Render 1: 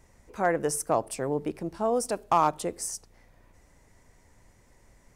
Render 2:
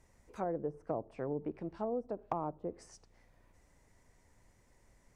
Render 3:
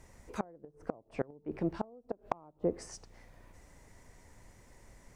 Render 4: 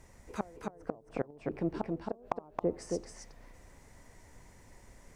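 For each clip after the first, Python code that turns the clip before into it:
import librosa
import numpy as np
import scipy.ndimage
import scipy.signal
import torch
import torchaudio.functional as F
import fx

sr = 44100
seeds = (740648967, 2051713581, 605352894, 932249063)

y1 = fx.env_lowpass_down(x, sr, base_hz=530.0, full_db=-24.0)
y1 = y1 * librosa.db_to_amplitude(-7.5)
y2 = fx.gate_flip(y1, sr, shuts_db=-28.0, range_db=-27)
y2 = y2 * librosa.db_to_amplitude(9.0)
y3 = y2 + 10.0 ** (-3.5 / 20.0) * np.pad(y2, (int(271 * sr / 1000.0), 0))[:len(y2)]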